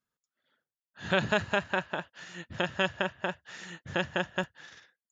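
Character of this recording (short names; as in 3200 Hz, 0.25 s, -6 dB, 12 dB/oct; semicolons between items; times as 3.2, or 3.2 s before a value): noise floor -96 dBFS; spectral tilt -2.5 dB/oct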